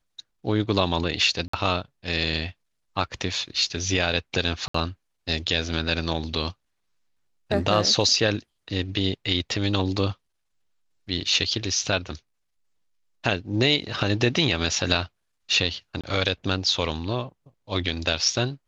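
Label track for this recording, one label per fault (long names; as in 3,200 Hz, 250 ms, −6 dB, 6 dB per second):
1.480000	1.530000	drop-out 54 ms
4.680000	4.740000	drop-out 64 ms
16.010000	16.040000	drop-out 26 ms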